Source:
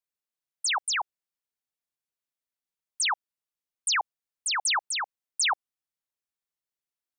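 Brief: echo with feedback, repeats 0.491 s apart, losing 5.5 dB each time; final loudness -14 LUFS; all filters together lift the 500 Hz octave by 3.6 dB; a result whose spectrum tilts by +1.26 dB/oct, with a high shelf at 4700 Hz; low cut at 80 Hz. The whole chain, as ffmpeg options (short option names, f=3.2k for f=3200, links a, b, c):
-af "highpass=80,equalizer=f=500:t=o:g=5.5,highshelf=f=4.7k:g=6.5,aecho=1:1:491|982|1473|1964|2455|2946|3437:0.531|0.281|0.149|0.079|0.0419|0.0222|0.0118,volume=11.5dB"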